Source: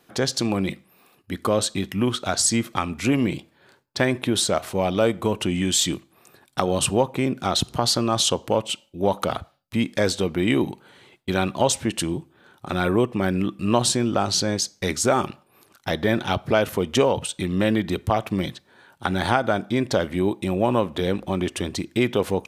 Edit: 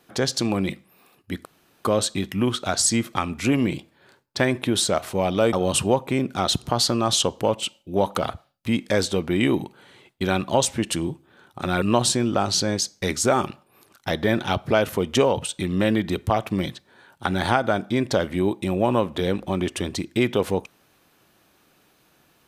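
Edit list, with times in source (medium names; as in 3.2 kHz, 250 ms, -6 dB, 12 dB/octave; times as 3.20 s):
1.45 s: insert room tone 0.40 s
5.13–6.60 s: delete
12.89–13.62 s: delete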